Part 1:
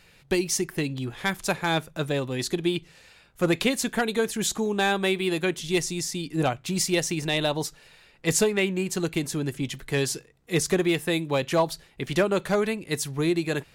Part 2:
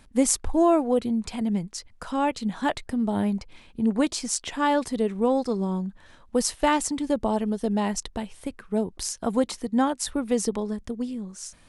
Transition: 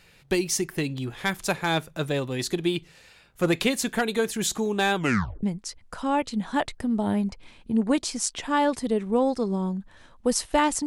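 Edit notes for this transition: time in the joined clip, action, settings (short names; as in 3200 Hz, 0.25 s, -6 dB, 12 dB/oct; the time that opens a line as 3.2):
part 1
4.95 tape stop 0.48 s
5.43 switch to part 2 from 1.52 s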